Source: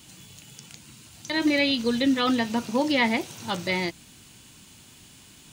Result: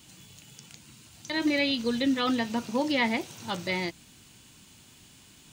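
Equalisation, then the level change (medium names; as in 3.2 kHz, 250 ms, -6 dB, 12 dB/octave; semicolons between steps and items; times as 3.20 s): peaking EQ 11 kHz -4.5 dB 0.28 oct; -3.5 dB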